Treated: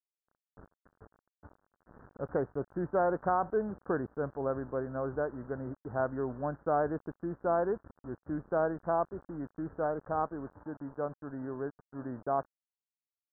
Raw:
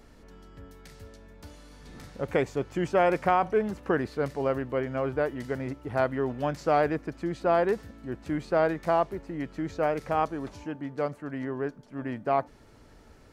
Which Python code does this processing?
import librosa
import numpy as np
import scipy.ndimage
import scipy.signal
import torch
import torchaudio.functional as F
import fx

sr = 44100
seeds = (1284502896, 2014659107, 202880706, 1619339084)

y = np.where(np.abs(x) >= 10.0 ** (-41.0 / 20.0), x, 0.0)
y = scipy.signal.sosfilt(scipy.signal.butter(12, 1600.0, 'lowpass', fs=sr, output='sos'), y)
y = y * librosa.db_to_amplitude(-5.5)